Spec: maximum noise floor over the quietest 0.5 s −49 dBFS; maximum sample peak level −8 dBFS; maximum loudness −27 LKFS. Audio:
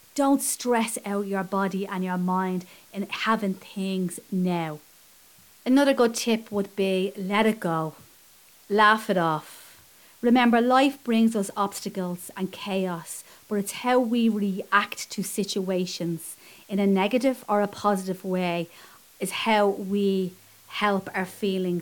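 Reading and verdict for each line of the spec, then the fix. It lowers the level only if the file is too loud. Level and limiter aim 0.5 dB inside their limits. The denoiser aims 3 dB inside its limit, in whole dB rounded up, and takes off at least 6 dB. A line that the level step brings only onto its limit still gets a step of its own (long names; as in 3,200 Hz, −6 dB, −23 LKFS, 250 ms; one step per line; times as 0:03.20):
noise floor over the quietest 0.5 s −54 dBFS: in spec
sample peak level −5.5 dBFS: out of spec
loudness −25.0 LKFS: out of spec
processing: level −2.5 dB
brickwall limiter −8.5 dBFS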